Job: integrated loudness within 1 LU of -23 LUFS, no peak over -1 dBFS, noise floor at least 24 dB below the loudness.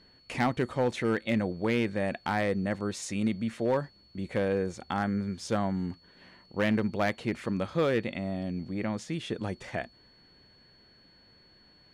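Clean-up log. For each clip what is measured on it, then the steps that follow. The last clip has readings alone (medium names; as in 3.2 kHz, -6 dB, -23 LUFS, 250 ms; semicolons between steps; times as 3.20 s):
clipped samples 0.6%; clipping level -19.5 dBFS; steady tone 4.4 kHz; tone level -59 dBFS; loudness -31.0 LUFS; peak level -19.5 dBFS; loudness target -23.0 LUFS
-> clip repair -19.5 dBFS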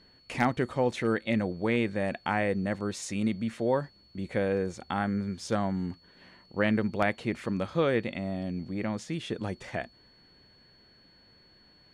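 clipped samples 0.0%; steady tone 4.4 kHz; tone level -59 dBFS
-> band-stop 4.4 kHz, Q 30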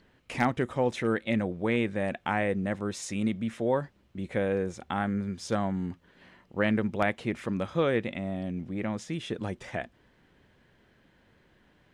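steady tone not found; loudness -30.5 LUFS; peak level -10.5 dBFS; loudness target -23.0 LUFS
-> trim +7.5 dB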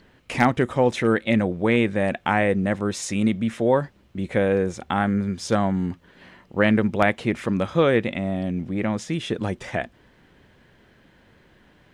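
loudness -23.0 LUFS; peak level -3.0 dBFS; noise floor -57 dBFS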